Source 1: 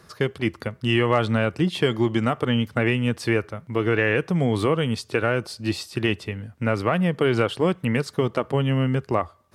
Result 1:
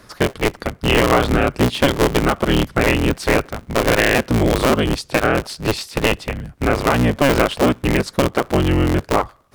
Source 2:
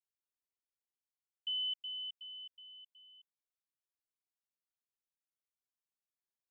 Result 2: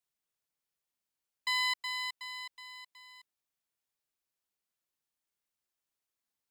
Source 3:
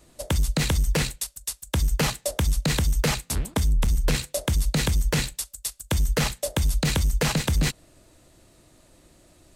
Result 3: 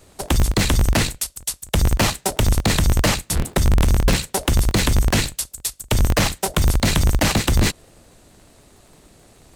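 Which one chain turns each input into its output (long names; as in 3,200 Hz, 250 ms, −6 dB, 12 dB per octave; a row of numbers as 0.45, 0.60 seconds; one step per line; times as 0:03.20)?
sub-harmonics by changed cycles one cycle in 3, inverted
level +5.5 dB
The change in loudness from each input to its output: +5.5, +5.0, +5.5 LU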